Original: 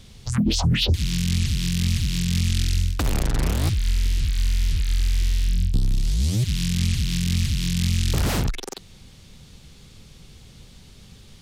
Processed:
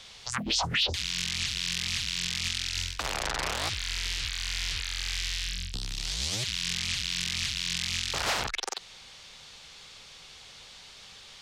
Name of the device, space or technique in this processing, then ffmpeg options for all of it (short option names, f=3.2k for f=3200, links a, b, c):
DJ mixer with the lows and highs turned down: -filter_complex "[0:a]acrossover=split=590 7400:gain=0.0708 1 0.178[a][b][c];[a][b][c]amix=inputs=3:normalize=0,alimiter=limit=-24dB:level=0:latency=1:release=50,asettb=1/sr,asplit=3[d][e][f];[d]atrim=end=5.144[g];[e]atrim=start=5.14:end=5.99,asetpts=PTS-STARTPTS,afade=t=in:d=0.004:c=qsin,afade=t=out:st=0.846:d=0.004:c=qsin,equalizer=f=590:t=o:w=1.8:g=-5.5[h];[f]atrim=start=5.986[i];[g][h]acrossfade=d=0.004:c1=hsin:c2=qsin[j];[j][i]acrossfade=d=0.004:c1=qsin:c2=hsin,volume=6dB"